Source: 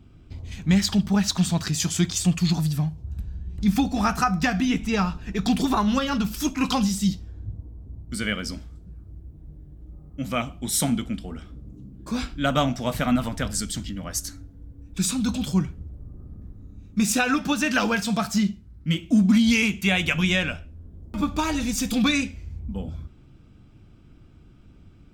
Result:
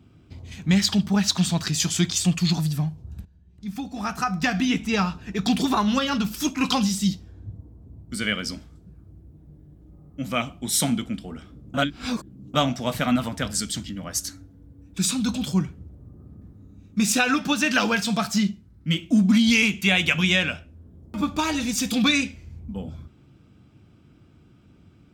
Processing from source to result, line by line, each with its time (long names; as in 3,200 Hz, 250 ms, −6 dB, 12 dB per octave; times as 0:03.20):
0:03.25–0:04.58: fade in quadratic, from −15.5 dB
0:11.74–0:12.54: reverse
whole clip: dynamic equaliser 3,600 Hz, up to +4 dB, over −36 dBFS, Q 0.73; high-pass filter 91 Hz 12 dB per octave